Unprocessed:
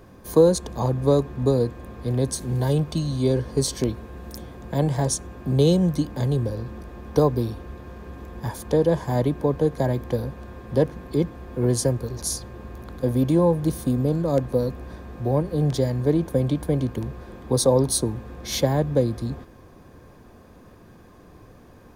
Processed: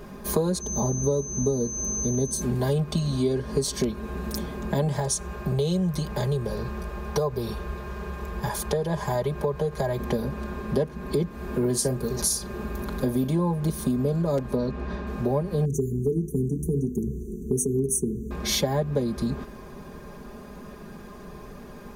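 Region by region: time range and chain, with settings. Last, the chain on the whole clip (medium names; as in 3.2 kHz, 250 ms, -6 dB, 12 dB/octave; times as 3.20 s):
0.60–2.40 s: peaking EQ 2.2 kHz -11 dB 3 oct + whistle 6.2 kHz -29 dBFS
4.99–10.00 s: peaking EQ 260 Hz -14 dB 0.52 oct + compression 1.5:1, threshold -27 dBFS
11.30–13.29 s: treble shelf 9.2 kHz +6.5 dB + doubling 39 ms -12 dB
14.55–15.07 s: low-pass 4.7 kHz + short-mantissa float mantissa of 8-bit
15.65–18.31 s: brick-wall FIR band-stop 460–5800 Hz + hum notches 50/100/150/200/250/300/350/400/450/500 Hz
whole clip: comb 4.9 ms, depth 82%; compression 4:1, threshold -28 dBFS; trim +5 dB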